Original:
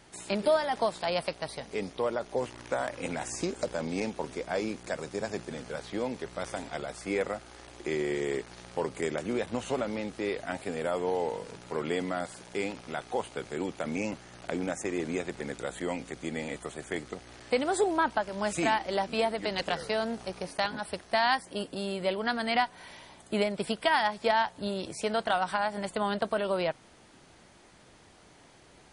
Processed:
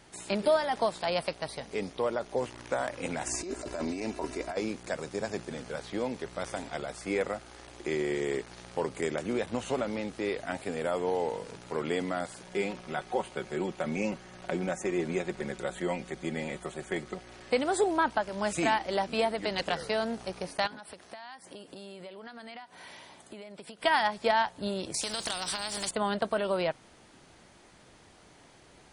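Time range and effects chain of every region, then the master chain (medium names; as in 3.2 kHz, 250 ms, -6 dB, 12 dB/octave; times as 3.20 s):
3.26–4.57 s: comb 3 ms, depth 57% + compressor with a negative ratio -34 dBFS + band-stop 3.3 kHz, Q 7.8
12.43–17.52 s: treble shelf 4.5 kHz -5 dB + comb 5.4 ms, depth 58%
20.67–23.82 s: high-pass 160 Hz 6 dB/octave + compression 12:1, threshold -41 dBFS
24.94–25.91 s: resonant high shelf 3.1 kHz +13.5 dB, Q 1.5 + compression 3:1, threshold -30 dBFS + spectrum-flattening compressor 2:1
whole clip: none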